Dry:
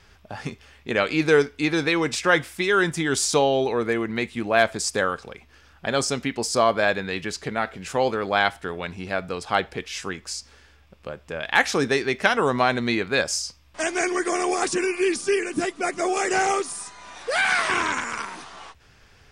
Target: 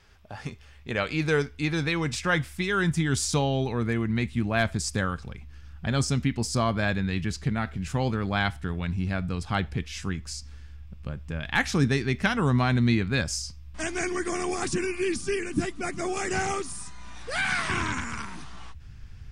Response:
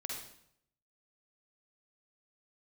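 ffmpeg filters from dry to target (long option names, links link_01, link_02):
-af "asubboost=boost=11:cutoff=150,volume=-5dB"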